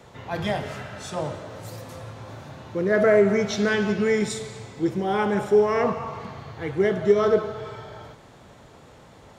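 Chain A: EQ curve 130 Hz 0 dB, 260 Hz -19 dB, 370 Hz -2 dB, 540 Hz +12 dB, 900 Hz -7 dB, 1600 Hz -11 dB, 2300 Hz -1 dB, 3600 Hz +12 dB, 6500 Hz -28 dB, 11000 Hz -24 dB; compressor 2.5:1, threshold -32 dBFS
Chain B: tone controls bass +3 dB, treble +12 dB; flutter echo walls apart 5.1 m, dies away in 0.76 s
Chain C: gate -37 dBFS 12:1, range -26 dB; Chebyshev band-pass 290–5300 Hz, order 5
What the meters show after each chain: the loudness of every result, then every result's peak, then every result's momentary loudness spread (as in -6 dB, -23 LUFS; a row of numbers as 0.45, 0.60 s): -32.5, -19.0, -24.0 LUFS; -17.5, -3.5, -7.5 dBFS; 14, 18, 19 LU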